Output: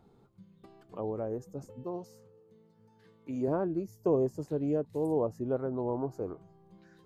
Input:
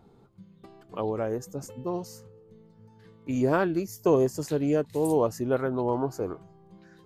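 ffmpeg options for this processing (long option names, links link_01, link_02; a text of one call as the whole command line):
ffmpeg -i in.wav -filter_complex "[0:a]asettb=1/sr,asplit=3[link_01][link_02][link_03];[link_01]atrim=end=1.834[link_04];[link_02]atrim=start=1.83:end=3.48,asetpts=PTS-STARTPTS,afade=type=in:duration=0.004:curve=qsin,afade=type=out:start_time=1.646:duration=0.004:curve=qsin,highpass=frequency=210:poles=1[link_05];[link_03]atrim=start=3.476[link_06];[link_04][link_05]acrossfade=duration=0.004:curve1=hsin:curve2=qsin[link_07];[link_07][link_06]acrossfade=duration=0.004:curve1=qsin:curve2=hsin,acrossover=split=1000[link_08][link_09];[link_09]acompressor=threshold=-56dB:ratio=5[link_10];[link_08][link_10]amix=inputs=2:normalize=0,volume=-5dB" out.wav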